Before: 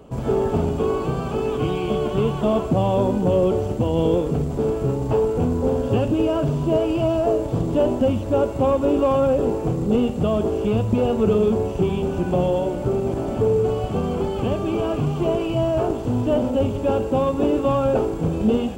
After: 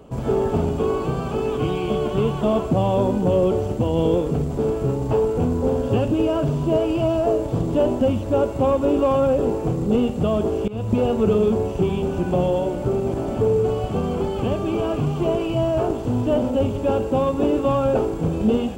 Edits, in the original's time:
0:10.68–0:10.93: fade in, from −21 dB

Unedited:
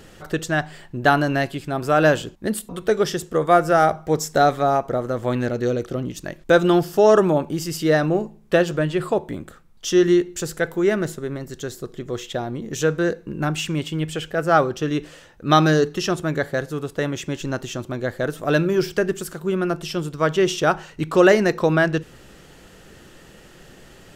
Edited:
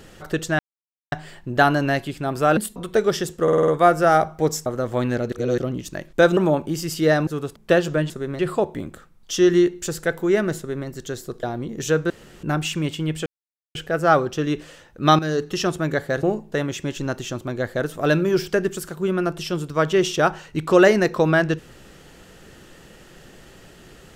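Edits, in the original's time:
0:00.59: splice in silence 0.53 s
0:02.04–0:02.50: remove
0:03.36: stutter 0.05 s, 6 plays
0:04.34–0:04.97: remove
0:05.63–0:05.89: reverse
0:06.68–0:07.20: remove
0:08.10–0:08.39: swap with 0:16.67–0:16.96
0:11.12–0:11.41: duplicate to 0:08.93
0:11.97–0:12.36: remove
0:13.03–0:13.36: fill with room tone
0:14.19: splice in silence 0.49 s
0:15.63–0:16.02: fade in, from −12.5 dB

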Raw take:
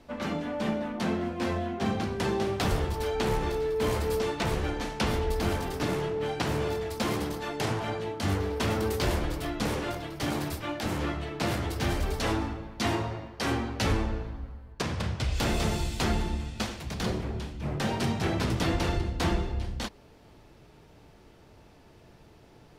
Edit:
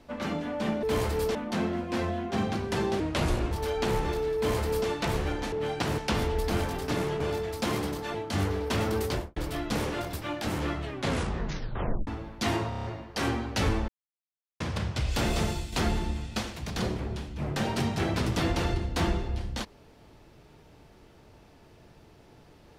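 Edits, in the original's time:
0:02.48–0:02.89: play speed 80%
0:03.74–0:04.26: duplicate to 0:00.83
0:06.12–0:06.58: move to 0:04.90
0:07.52–0:08.04: remove
0:08.94–0:09.26: fade out and dull
0:10.03–0:10.52: remove
0:11.22: tape stop 1.24 s
0:13.08: stutter 0.03 s, 6 plays
0:14.12–0:14.84: silence
0:15.67–0:15.96: fade out, to −7 dB

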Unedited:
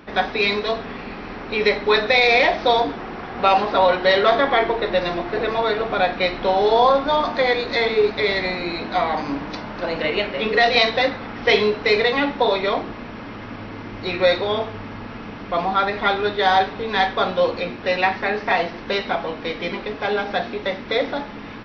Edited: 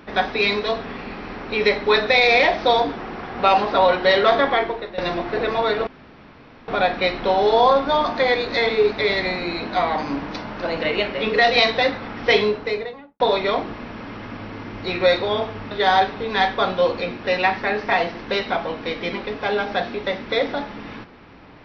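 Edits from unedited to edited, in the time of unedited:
0:04.45–0:04.98: fade out, to −16.5 dB
0:05.87: splice in room tone 0.81 s
0:11.47–0:12.39: fade out and dull
0:14.90–0:16.30: remove

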